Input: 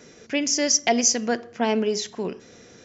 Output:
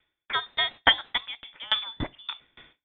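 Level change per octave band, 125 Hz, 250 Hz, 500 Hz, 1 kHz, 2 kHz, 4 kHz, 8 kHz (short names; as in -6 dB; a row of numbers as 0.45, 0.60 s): -2.5 dB, -17.5 dB, -16.0 dB, -2.5 dB, +3.0 dB, +3.0 dB, n/a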